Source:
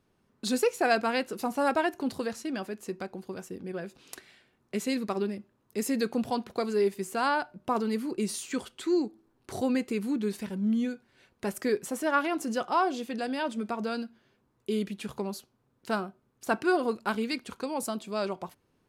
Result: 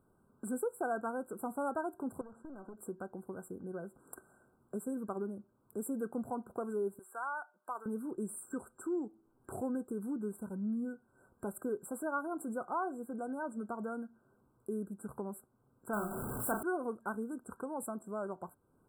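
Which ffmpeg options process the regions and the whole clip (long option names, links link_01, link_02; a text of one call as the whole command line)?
ffmpeg -i in.wav -filter_complex "[0:a]asettb=1/sr,asplit=3[link_01][link_02][link_03];[link_01]atrim=end=2.214[link_04];[link_02]atrim=start=2.21:end=2.78,asetpts=PTS-STARTPTS,afade=type=in:duration=0.004:curve=qsin,afade=type=out:start_time=0.566:duration=0.004:curve=qsin,lowpass=2600,aeval=exprs='clip(val(0),-1,0.00891)':channel_layout=same,acompressor=threshold=-40dB:ratio=6:attack=3.2:release=140:knee=1:detection=peak[link_05];[link_03]atrim=start=2.776[link_06];[link_04][link_05]acrossfade=duration=0.004:curve1=hsin:curve2=qsin[link_07];[link_07][link_06]acrossfade=duration=0.004:curve1=qsin:curve2=hsin,asettb=1/sr,asplit=3[link_08][link_09][link_10];[link_08]atrim=end=6.994[link_11];[link_09]atrim=start=6.99:end=7.86,asetpts=PTS-STARTPTS,afade=type=in:duration=0.004:curve=qsin,afade=type=out:start_time=0.866:duration=0.004:curve=qsin,acrossover=split=4400[link_12][link_13];[link_13]acompressor=threshold=-50dB:ratio=4:attack=1:release=60[link_14];[link_12][link_14]amix=inputs=2:normalize=0,highpass=1000[link_15];[link_10]atrim=start=7.856[link_16];[link_11][link_15]acrossfade=duration=0.004:curve1=hsin:curve2=qsin[link_17];[link_17][link_16]acrossfade=duration=0.004:curve1=qsin:curve2=hsin,asettb=1/sr,asplit=3[link_18][link_19][link_20];[link_18]atrim=end=15.934[link_21];[link_19]atrim=start=15.93:end=16.63,asetpts=PTS-STARTPTS,afade=type=in:duration=0.004:curve=qsin,afade=type=out:start_time=0.696:duration=0.004:curve=qsin,aeval=exprs='val(0)+0.5*0.0376*sgn(val(0))':channel_layout=same,highshelf=frequency=8700:gain=8.5,asplit=2[link_22][link_23];[link_23]adelay=34,volume=-5dB[link_24];[link_22][link_24]amix=inputs=2:normalize=0,atrim=end_sample=30870[link_25];[link_20]atrim=start=16.626[link_26];[link_21][link_25]acrossfade=duration=0.004:curve1=hsin:curve2=qsin[link_27];[link_27][link_26]acrossfade=duration=0.004:curve1=qsin:curve2=hsin,afftfilt=real='re*(1-between(b*sr/4096,1600,7400))':imag='im*(1-between(b*sr/4096,1600,7400))':win_size=4096:overlap=0.75,acompressor=threshold=-53dB:ratio=1.5,volume=1dB" out.wav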